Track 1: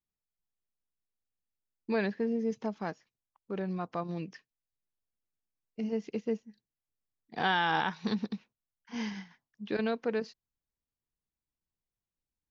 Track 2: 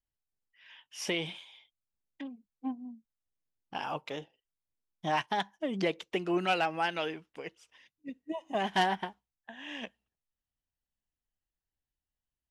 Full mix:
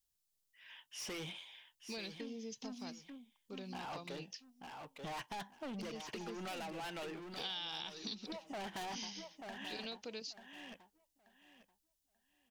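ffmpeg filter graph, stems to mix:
-filter_complex "[0:a]aexciter=amount=9.5:drive=5.7:freq=2.6k,volume=-12dB,asplit=2[a][b];[1:a]asoftclip=type=hard:threshold=-37dB,volume=-1.5dB,asplit=2[c][d];[d]volume=-8.5dB[e];[b]apad=whole_len=555950[f];[c][f]sidechaincompress=threshold=-40dB:ratio=8:attack=16:release=152[g];[e]aecho=0:1:886|1772|2658|3544:1|0.22|0.0484|0.0106[h];[a][g][h]amix=inputs=3:normalize=0,acompressor=threshold=-43dB:ratio=3"

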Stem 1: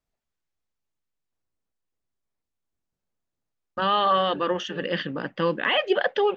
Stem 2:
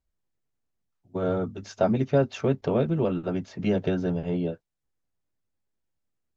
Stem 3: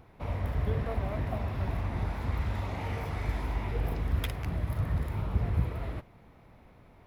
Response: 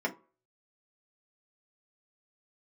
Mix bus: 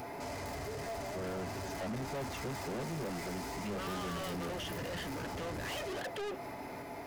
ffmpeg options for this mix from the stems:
-filter_complex "[0:a]volume=30dB,asoftclip=hard,volume=-30dB,volume=1dB[a];[1:a]volume=-1dB[b];[2:a]asplit=2[c][d];[d]highpass=f=720:p=1,volume=41dB,asoftclip=type=tanh:threshold=-15dB[e];[c][e]amix=inputs=2:normalize=0,lowpass=f=2.9k:p=1,volume=-6dB,aexciter=amount=6:drive=3.9:freq=4.8k,volume=-13dB,asplit=2[f][g];[g]volume=-7dB[h];[3:a]atrim=start_sample=2205[i];[h][i]afir=irnorm=-1:irlink=0[j];[a][b][f][j]amix=inputs=4:normalize=0,asoftclip=type=tanh:threshold=-29dB,alimiter=level_in=11.5dB:limit=-24dB:level=0:latency=1:release=242,volume=-11.5dB"

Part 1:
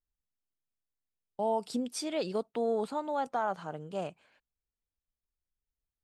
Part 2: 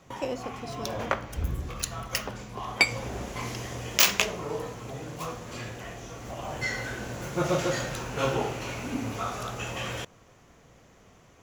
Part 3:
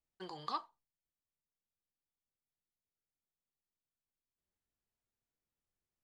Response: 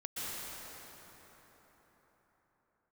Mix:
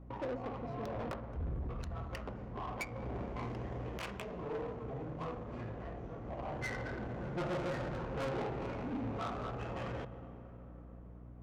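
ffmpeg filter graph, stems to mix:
-filter_complex "[1:a]alimiter=limit=-15dB:level=0:latency=1:release=359,volume=-2.5dB,asplit=2[a][b];[b]volume=-14dB[c];[2:a]volume=-12dB[d];[3:a]atrim=start_sample=2205[e];[c][e]afir=irnorm=-1:irlink=0[f];[a][d][f]amix=inputs=3:normalize=0,adynamicsmooth=sensitivity=2:basefreq=810,aeval=exprs='val(0)+0.00282*(sin(2*PI*60*n/s)+sin(2*PI*2*60*n/s)/2+sin(2*PI*3*60*n/s)/3+sin(2*PI*4*60*n/s)/4+sin(2*PI*5*60*n/s)/5)':c=same,asoftclip=type=tanh:threshold=-33.5dB"

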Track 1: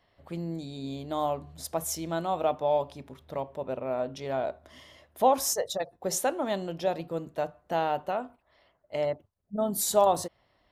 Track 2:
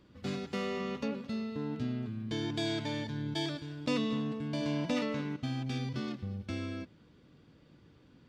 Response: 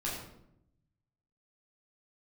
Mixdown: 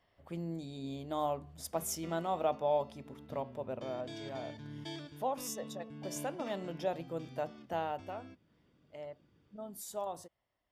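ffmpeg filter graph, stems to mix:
-filter_complex "[0:a]volume=1.5dB,afade=t=out:st=3.52:d=0.64:silence=0.398107,afade=t=in:st=6.17:d=0.55:silence=0.473151,afade=t=out:st=7.63:d=0.71:silence=0.298538,asplit=2[a][b];[1:a]adelay=1500,volume=-9dB[c];[b]apad=whole_len=431563[d];[c][d]sidechaincompress=threshold=-38dB:ratio=8:attack=16:release=1130[e];[a][e]amix=inputs=2:normalize=0,bandreject=f=4.1k:w=8.7"

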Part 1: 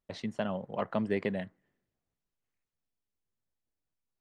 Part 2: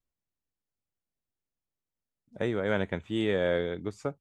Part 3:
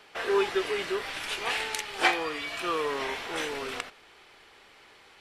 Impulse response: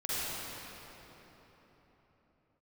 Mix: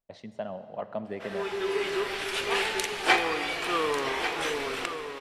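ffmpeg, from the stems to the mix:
-filter_complex "[0:a]equalizer=f=670:t=o:w=0.73:g=9,volume=-8.5dB,asplit=3[a][b][c];[b]volume=-17.5dB[d];[1:a]acompressor=threshold=-32dB:ratio=6,volume=-10.5dB[e];[2:a]adelay=1050,volume=0.5dB,asplit=3[f][g][h];[g]volume=-15dB[i];[h]volume=-9dB[j];[c]apad=whole_len=275850[k];[f][k]sidechaincompress=threshold=-46dB:ratio=8:attack=16:release=621[l];[3:a]atrim=start_sample=2205[m];[d][i]amix=inputs=2:normalize=0[n];[n][m]afir=irnorm=-1:irlink=0[o];[j]aecho=0:1:1144:1[p];[a][e][l][o][p]amix=inputs=5:normalize=0"

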